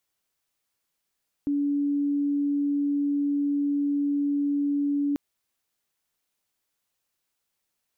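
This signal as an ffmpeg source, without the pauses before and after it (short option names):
-f lavfi -i "aevalsrc='0.0794*sin(2*PI*286*t)':d=3.69:s=44100"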